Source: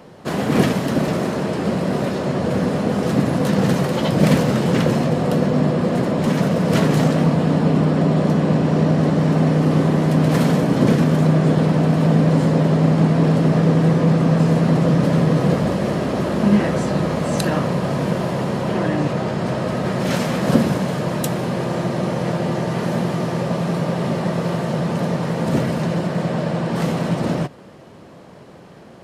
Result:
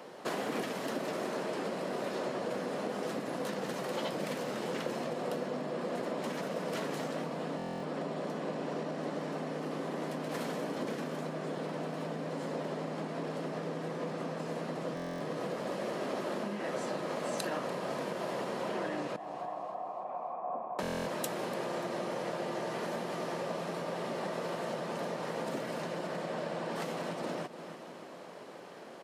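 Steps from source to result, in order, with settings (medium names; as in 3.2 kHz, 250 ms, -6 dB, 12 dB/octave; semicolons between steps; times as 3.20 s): 19.16–20.79 s: cascade formant filter a; feedback delay 292 ms, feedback 50%, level -19.5 dB; compression 4:1, threshold -27 dBFS, peak gain reduction 15 dB; high-pass 350 Hz 12 dB/octave; buffer glitch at 7.57/14.95/20.81 s, samples 1024, times 10; trim -3 dB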